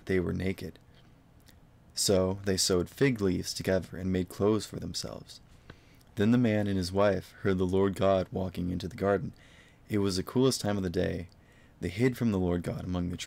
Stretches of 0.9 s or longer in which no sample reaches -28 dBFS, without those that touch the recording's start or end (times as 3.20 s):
0.65–1.98 s
5.13–6.19 s